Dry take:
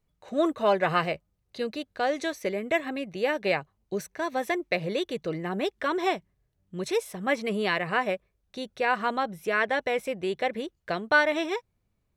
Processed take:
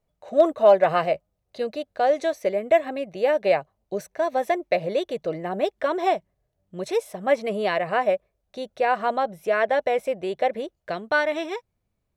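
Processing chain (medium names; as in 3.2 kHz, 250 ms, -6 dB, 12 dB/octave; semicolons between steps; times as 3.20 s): peaking EQ 630 Hz +12.5 dB 0.77 oct, from 10.90 s +4 dB; hard clipper -5 dBFS, distortion -44 dB; trim -2 dB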